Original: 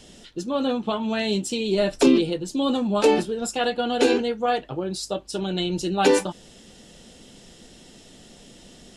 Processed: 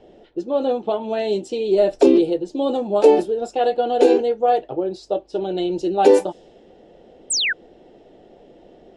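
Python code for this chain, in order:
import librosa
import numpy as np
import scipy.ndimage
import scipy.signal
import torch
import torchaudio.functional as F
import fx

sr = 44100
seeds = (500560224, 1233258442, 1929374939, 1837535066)

y = fx.env_lowpass(x, sr, base_hz=2100.0, full_db=-17.0)
y = fx.band_shelf(y, sr, hz=510.0, db=12.5, octaves=1.7)
y = fx.spec_paint(y, sr, seeds[0], shape='fall', start_s=7.3, length_s=0.23, low_hz=1400.0, high_hz=9100.0, level_db=-14.0)
y = F.gain(torch.from_numpy(y), -6.0).numpy()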